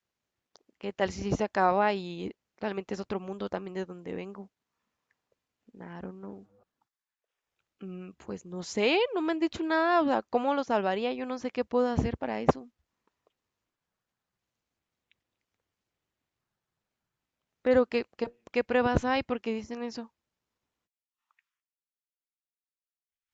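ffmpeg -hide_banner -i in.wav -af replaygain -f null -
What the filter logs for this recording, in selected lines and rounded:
track_gain = +10.0 dB
track_peak = 0.251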